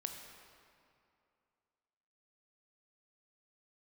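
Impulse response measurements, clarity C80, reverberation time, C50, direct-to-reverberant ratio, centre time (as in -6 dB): 5.5 dB, 2.5 s, 5.0 dB, 3.5 dB, 56 ms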